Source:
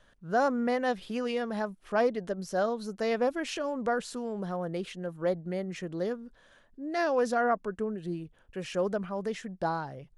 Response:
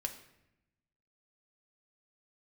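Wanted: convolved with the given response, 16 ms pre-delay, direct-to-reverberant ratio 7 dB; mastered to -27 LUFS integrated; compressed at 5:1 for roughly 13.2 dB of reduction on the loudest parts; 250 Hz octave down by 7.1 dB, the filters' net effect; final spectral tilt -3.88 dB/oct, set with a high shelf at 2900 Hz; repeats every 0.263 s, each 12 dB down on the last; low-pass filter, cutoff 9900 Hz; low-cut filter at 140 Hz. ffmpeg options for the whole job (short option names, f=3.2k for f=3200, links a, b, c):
-filter_complex "[0:a]highpass=140,lowpass=9.9k,equalizer=f=250:t=o:g=-8.5,highshelf=f=2.9k:g=5.5,acompressor=threshold=-38dB:ratio=5,aecho=1:1:263|526|789:0.251|0.0628|0.0157,asplit=2[a][b];[1:a]atrim=start_sample=2205,adelay=16[c];[b][c]afir=irnorm=-1:irlink=0,volume=-7dB[d];[a][d]amix=inputs=2:normalize=0,volume=13.5dB"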